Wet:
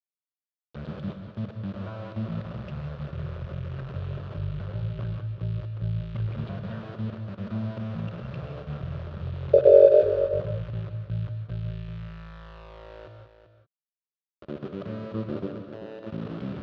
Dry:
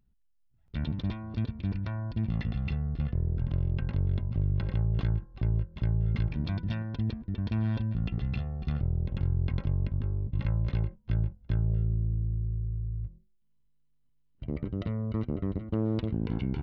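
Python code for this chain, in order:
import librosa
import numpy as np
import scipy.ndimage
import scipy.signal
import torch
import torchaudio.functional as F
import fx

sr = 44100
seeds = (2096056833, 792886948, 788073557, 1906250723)

y = fx.bin_expand(x, sr, power=2.0)
y = fx.tilt_eq(y, sr, slope=-3.5)
y = fx.ring_mod(y, sr, carrier_hz=510.0, at=(9.53, 10.03))
y = fx.level_steps(y, sr, step_db=20, at=(15.46, 16.06), fade=0.02)
y = np.where(np.abs(y) >= 10.0 ** (-35.0 / 20.0), y, 0.0)
y = fx.cabinet(y, sr, low_hz=210.0, low_slope=12, high_hz=3800.0, hz=(260.0, 390.0, 570.0, 830.0, 1300.0, 2100.0), db=(-7, 4, 9, -5, 5, -6))
y = y + 10.0 ** (-11.0 / 20.0) * np.pad(y, (int(388 * sr / 1000.0), 0))[:len(y)]
y = fx.rev_gated(y, sr, seeds[0], gate_ms=210, shape='rising', drr_db=5.5)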